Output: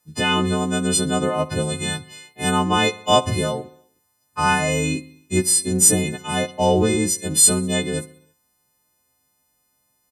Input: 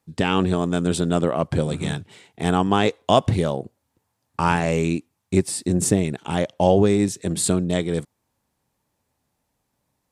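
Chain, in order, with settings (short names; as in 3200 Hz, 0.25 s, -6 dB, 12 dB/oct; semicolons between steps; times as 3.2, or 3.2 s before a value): frequency quantiser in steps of 3 st; feedback echo 65 ms, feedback 59%, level -20.5 dB; gain -1 dB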